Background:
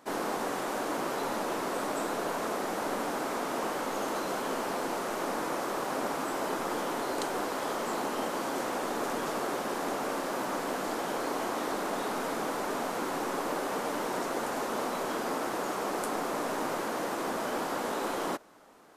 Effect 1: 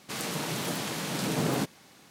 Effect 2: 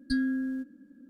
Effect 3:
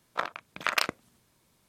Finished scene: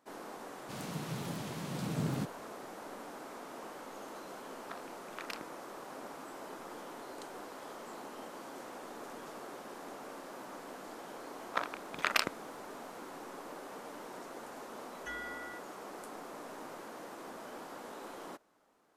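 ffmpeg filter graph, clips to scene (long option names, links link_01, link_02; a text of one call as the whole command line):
ffmpeg -i bed.wav -i cue0.wav -i cue1.wav -i cue2.wav -filter_complex "[3:a]asplit=2[link_01][link_02];[0:a]volume=-14dB[link_03];[1:a]bass=frequency=250:gain=12,treble=frequency=4000:gain=-1[link_04];[2:a]aeval=exprs='val(0)*sin(2*PI*1700*n/s)':channel_layout=same[link_05];[link_04]atrim=end=2.1,asetpts=PTS-STARTPTS,volume=-13dB,afade=type=in:duration=0.004:curve=hsin,afade=type=out:start_time=2.096:duration=0.004:curve=hsin,adelay=600[link_06];[link_01]atrim=end=1.68,asetpts=PTS-STARTPTS,volume=-17.5dB,afade=type=in:duration=0.004:curve=hsin,afade=type=out:start_time=1.676:duration=0.004:curve=hsin,adelay=4520[link_07];[link_02]atrim=end=1.68,asetpts=PTS-STARTPTS,volume=-3.5dB,afade=type=in:duration=0.004:curve=hsin,afade=type=out:start_time=1.676:duration=0.004:curve=hsin,adelay=501858S[link_08];[link_05]atrim=end=1.09,asetpts=PTS-STARTPTS,volume=-13dB,afade=type=in:duration=0.004:curve=hsin,afade=type=out:start_time=1.086:duration=0.004:curve=hsin,adelay=14960[link_09];[link_03][link_06][link_07][link_08][link_09]amix=inputs=5:normalize=0" out.wav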